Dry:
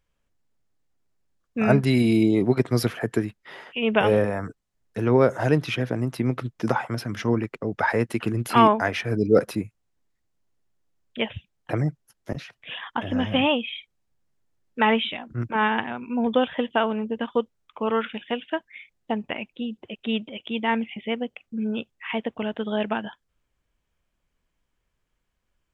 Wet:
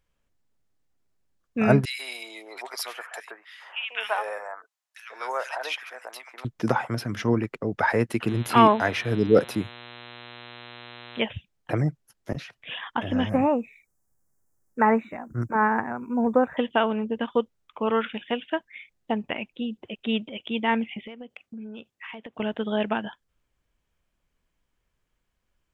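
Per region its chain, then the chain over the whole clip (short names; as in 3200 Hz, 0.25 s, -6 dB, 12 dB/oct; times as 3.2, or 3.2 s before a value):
1.85–6.45 HPF 760 Hz 24 dB/oct + bands offset in time highs, lows 0.14 s, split 1700 Hz
8.27–11.19 HPF 58 Hz + buzz 120 Hz, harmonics 34, -44 dBFS -1 dB/oct
13.29–16.57 Butterworth band-stop 3200 Hz, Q 0.61 + high shelf 2500 Hz +12 dB
21.03–22.4 HPF 120 Hz 6 dB/oct + compressor 16:1, threshold -35 dBFS
whole clip: dry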